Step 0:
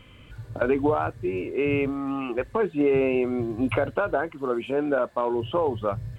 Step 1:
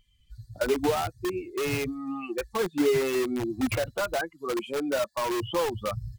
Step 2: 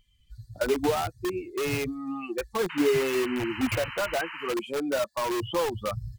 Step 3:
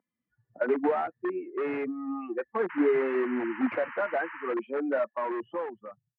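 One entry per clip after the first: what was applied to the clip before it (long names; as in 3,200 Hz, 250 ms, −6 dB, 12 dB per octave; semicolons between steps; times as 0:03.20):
spectral dynamics exaggerated over time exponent 2; in parallel at −4.5 dB: wrap-around overflow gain 26.5 dB
sound drawn into the spectrogram noise, 0:02.69–0:04.54, 850–3,100 Hz −39 dBFS
fade-out on the ending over 1.13 s; low-pass that shuts in the quiet parts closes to 1,200 Hz, open at −22 dBFS; Chebyshev band-pass filter 230–1,900 Hz, order 3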